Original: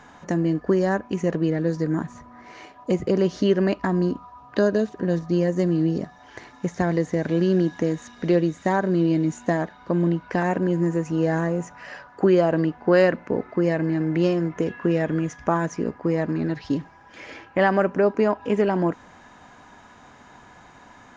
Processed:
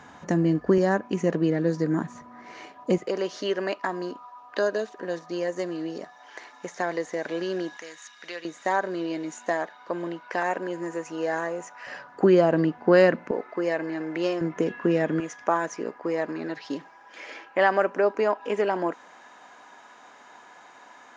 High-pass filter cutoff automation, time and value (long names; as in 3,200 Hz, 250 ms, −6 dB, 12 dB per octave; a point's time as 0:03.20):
62 Hz
from 0:00.78 160 Hz
from 0:02.98 540 Hz
from 0:07.77 1,400 Hz
from 0:08.45 540 Hz
from 0:11.87 150 Hz
from 0:13.31 460 Hz
from 0:14.41 200 Hz
from 0:15.20 430 Hz